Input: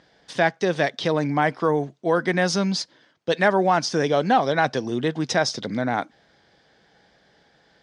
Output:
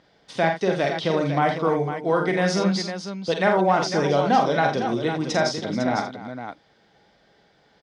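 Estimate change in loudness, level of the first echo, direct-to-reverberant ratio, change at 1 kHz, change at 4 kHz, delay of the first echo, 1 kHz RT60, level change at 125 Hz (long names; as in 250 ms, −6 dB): 0.0 dB, −7.0 dB, no reverb audible, +0.5 dB, −1.5 dB, 43 ms, no reverb audible, +1.0 dB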